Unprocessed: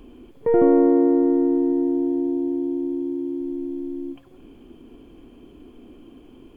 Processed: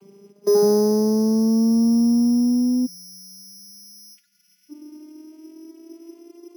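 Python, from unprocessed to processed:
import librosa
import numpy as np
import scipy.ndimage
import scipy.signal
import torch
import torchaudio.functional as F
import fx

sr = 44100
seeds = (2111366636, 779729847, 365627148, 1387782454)

y = fx.vocoder_glide(x, sr, note=55, semitones=10)
y = np.repeat(y[::8], 8)[:len(y)]
y = fx.spec_erase(y, sr, start_s=2.86, length_s=1.84, low_hz=210.0, high_hz=1400.0)
y = y * librosa.db_to_amplitude(3.5)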